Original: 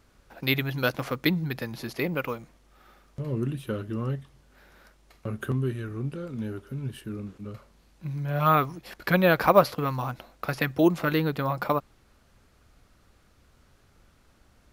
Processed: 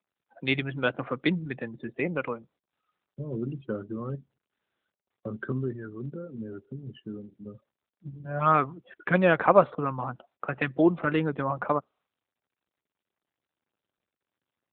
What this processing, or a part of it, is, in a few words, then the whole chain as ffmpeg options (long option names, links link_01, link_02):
mobile call with aggressive noise cancelling: -af "highpass=150,afftdn=noise_reduction=36:noise_floor=-39" -ar 8000 -c:a libopencore_amrnb -b:a 12200